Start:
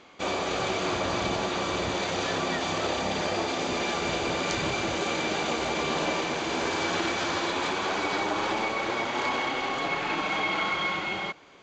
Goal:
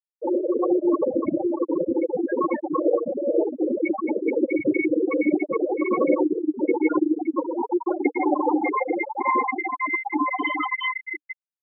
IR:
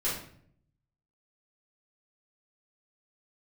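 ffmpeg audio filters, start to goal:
-filter_complex "[0:a]bandreject=frequency=720:width=21,asplit=2[link_01][link_02];[1:a]atrim=start_sample=2205[link_03];[link_02][link_03]afir=irnorm=-1:irlink=0,volume=-12dB[link_04];[link_01][link_04]amix=inputs=2:normalize=0,asetrate=41625,aresample=44100,atempo=1.05946,afftfilt=real='re*gte(hypot(re,im),0.224)':imag='im*gte(hypot(re,im),0.224)':win_size=1024:overlap=0.75,highpass=280,equalizer=frequency=300:width_type=q:width=4:gain=9,equalizer=frequency=480:width_type=q:width=4:gain=5,equalizer=frequency=680:width_type=q:width=4:gain=-4,equalizer=frequency=970:width_type=q:width=4:gain=5,equalizer=frequency=1700:width_type=q:width=4:gain=-7,lowpass=frequency=2500:width=0.5412,lowpass=frequency=2500:width=1.3066,volume=8dB"

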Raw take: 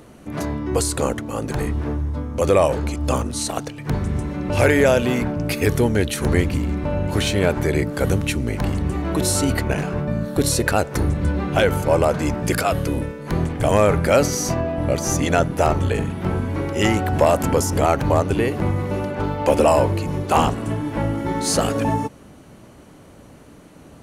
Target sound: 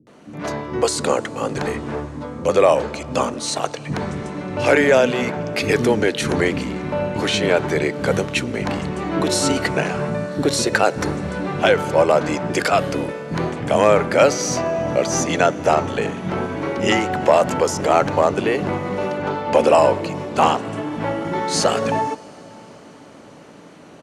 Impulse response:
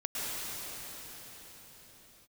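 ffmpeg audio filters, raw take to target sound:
-filter_complex "[0:a]acrossover=split=150 7900:gain=0.0794 1 0.1[link_01][link_02][link_03];[link_01][link_02][link_03]amix=inputs=3:normalize=0,acrossover=split=270[link_04][link_05];[link_05]adelay=70[link_06];[link_04][link_06]amix=inputs=2:normalize=0,dynaudnorm=framelen=280:gausssize=3:maxgain=4.5dB,asplit=2[link_07][link_08];[1:a]atrim=start_sample=2205[link_09];[link_08][link_09]afir=irnorm=-1:irlink=0,volume=-27dB[link_10];[link_07][link_10]amix=inputs=2:normalize=0"

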